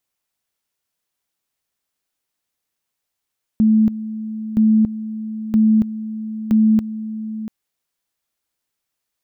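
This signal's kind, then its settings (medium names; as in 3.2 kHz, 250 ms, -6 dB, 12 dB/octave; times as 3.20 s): two-level tone 218 Hz -10 dBFS, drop 14 dB, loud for 0.28 s, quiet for 0.69 s, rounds 4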